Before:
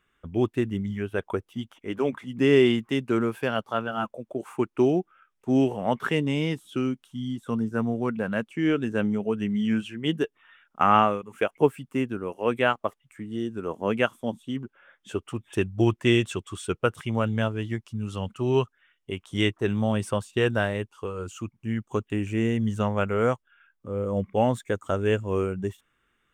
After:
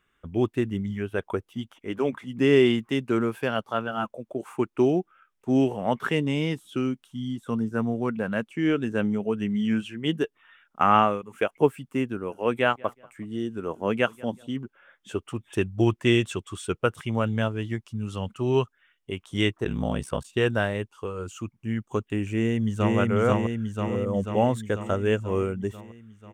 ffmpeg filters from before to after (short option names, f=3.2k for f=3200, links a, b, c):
-filter_complex "[0:a]asettb=1/sr,asplit=3[a][b][c];[a]atrim=end=12.124[d];[b]atrim=start=12.12:end=14.47,asetpts=PTS-STARTPTS,afade=t=in:d=0.004:c=qsin,afade=t=out:st=2.346:d=0.004:c=qsin,asplit=2[e][f];[f]adelay=187,lowpass=f=3k:p=1,volume=-23.5dB,asplit=2[g][h];[h]adelay=187,lowpass=f=3k:p=1,volume=0.34[i];[e][g][i]amix=inputs=3:normalize=0,atrim=end_sample=103635[j];[c]atrim=start=14.466[k];[d][j]acrossfade=d=0.004:c1=hsin:c2=qsin[l];[l][k]acrossfade=d=0.004:c1=qsin:c2=hsin,asplit=3[m][n][o];[m]afade=t=out:st=19.64:d=0.02[p];[n]aeval=exprs='val(0)*sin(2*PI*32*n/s)':c=same,afade=t=in:st=19.64:d=0.02,afade=t=out:st=20.23:d=0.02[q];[o]afade=t=in:st=20.23:d=0.02[r];[p][q][r]amix=inputs=3:normalize=0,asplit=2[s][t];[t]afade=t=in:st=22.31:d=0.01,afade=t=out:st=22.97:d=0.01,aecho=0:1:490|980|1470|1960|2450|2940|3430|3920|4410|4900|5390:0.944061|0.61364|0.398866|0.259263|0.168521|0.109538|0.0712|0.04628|0.030082|0.0195533|0.0127096[u];[s][u]amix=inputs=2:normalize=0"